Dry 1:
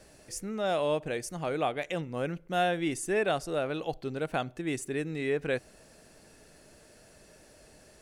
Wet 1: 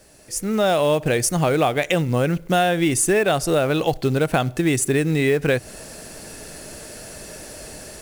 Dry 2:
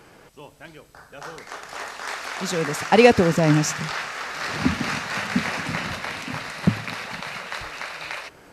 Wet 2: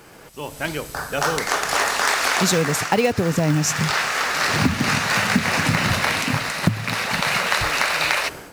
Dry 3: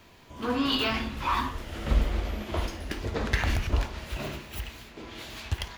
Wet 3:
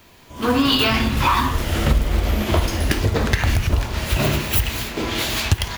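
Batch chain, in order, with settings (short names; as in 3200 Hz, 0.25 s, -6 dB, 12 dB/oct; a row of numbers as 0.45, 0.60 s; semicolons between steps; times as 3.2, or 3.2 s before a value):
high shelf 7800 Hz +8.5 dB; AGC gain up to 15 dB; companded quantiser 6-bit; dynamic EQ 110 Hz, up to +7 dB, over -36 dBFS, Q 1.5; compressor 5:1, threshold -18 dBFS; match loudness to -20 LUFS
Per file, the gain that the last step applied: +2.5, +2.5, +3.5 dB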